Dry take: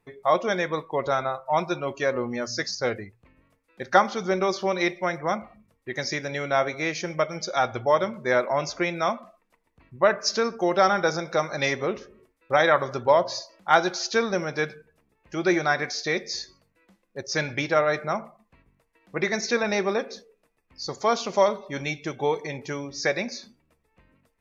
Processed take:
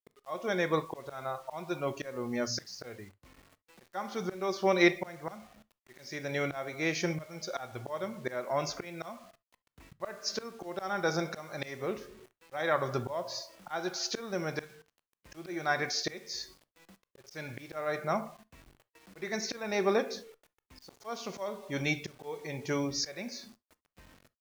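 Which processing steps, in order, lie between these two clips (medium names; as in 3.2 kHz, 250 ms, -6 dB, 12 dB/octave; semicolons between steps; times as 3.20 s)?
slow attack 707 ms; bit crusher 10-bit; harmonic-percussive split harmonic +4 dB; on a send: reverberation, pre-delay 3 ms, DRR 17 dB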